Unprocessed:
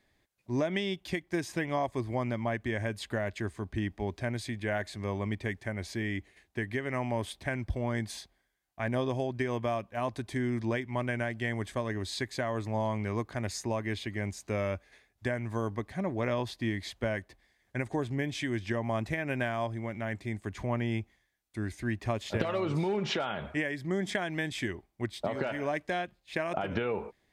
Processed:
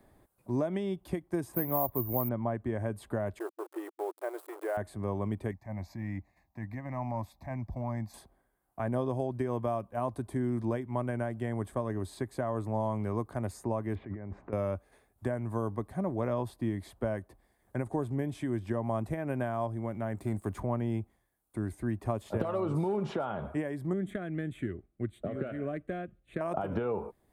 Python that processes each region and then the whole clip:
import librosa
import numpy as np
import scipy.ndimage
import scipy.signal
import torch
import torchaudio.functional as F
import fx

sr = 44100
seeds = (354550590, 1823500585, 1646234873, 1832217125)

y = fx.chain(x, sr, fx.block_float(bits=7),
    fx.lowpass(hz=4100.0, slope=12),
    fx.resample_bad(factor=3, down='filtered', up='zero_stuff'), at=(1.54, 2.29))
y = fx.chain(y, sr, fx.high_shelf(hz=6500.0, db=-11.5),
    fx.sample_gate(floor_db=-39.5),
    fx.brickwall_highpass(low_hz=320.0), at=(3.39, 4.77))
y = fx.chain(y, sr, fx.fixed_phaser(hz=2100.0, stages=8),
    fx.transient(attack_db=-9, sustain_db=-3), at=(5.51, 8.14))
y = fx.chain(y, sr, fx.cheby1_lowpass(hz=2000.0, order=3),
    fx.over_compress(threshold_db=-42.0, ratio=-1.0), at=(13.95, 14.53))
y = fx.chain(y, sr, fx.high_shelf(hz=4400.0, db=5.0),
    fx.leveller(passes=1), at=(20.17, 20.6))
y = fx.chain(y, sr, fx.self_delay(depth_ms=0.082),
    fx.air_absorb(metres=62.0),
    fx.fixed_phaser(hz=2200.0, stages=4), at=(23.93, 26.41))
y = fx.band_shelf(y, sr, hz=3400.0, db=-14.5, octaves=2.3)
y = fx.band_squash(y, sr, depth_pct=40)